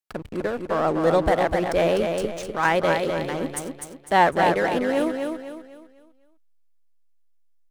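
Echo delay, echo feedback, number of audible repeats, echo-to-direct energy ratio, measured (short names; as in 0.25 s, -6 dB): 0.251 s, 37%, 4, -4.5 dB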